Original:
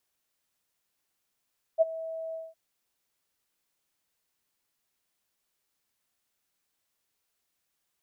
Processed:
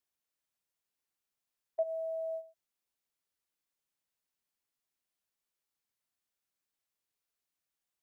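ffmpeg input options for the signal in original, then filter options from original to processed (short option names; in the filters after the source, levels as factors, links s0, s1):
-f lavfi -i "aevalsrc='0.168*sin(2*PI*649*t)':d=0.762:s=44100,afade=t=in:d=0.034,afade=t=out:st=0.034:d=0.023:silence=0.126,afade=t=out:st=0.56:d=0.202"
-af "agate=range=0.316:threshold=0.0112:ratio=16:detection=peak,alimiter=level_in=1.06:limit=0.0631:level=0:latency=1:release=98,volume=0.944"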